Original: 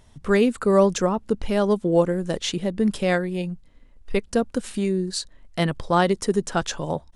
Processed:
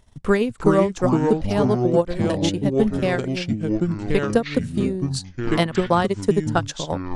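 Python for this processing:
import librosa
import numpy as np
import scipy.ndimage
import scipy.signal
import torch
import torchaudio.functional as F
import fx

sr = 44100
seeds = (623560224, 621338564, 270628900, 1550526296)

y = fx.transient(x, sr, attack_db=9, sustain_db=-9)
y = fx.echo_pitch(y, sr, ms=291, semitones=-4, count=3, db_per_echo=-3.0)
y = y * 10.0 ** (-4.0 / 20.0)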